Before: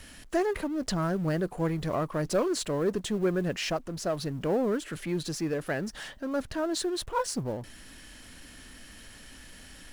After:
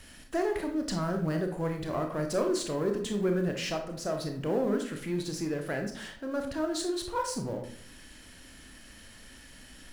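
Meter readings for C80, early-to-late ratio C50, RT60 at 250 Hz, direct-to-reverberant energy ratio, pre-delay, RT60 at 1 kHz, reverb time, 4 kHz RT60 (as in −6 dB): 11.5 dB, 7.0 dB, 0.60 s, 4.0 dB, 24 ms, 0.50 s, 0.55 s, 0.40 s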